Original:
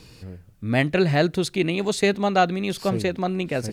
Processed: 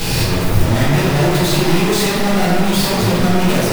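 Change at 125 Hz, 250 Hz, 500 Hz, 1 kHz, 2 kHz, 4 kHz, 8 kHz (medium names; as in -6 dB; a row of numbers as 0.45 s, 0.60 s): +11.5 dB, +8.5 dB, +5.0 dB, +5.5 dB, +6.5 dB, +11.5 dB, +14.0 dB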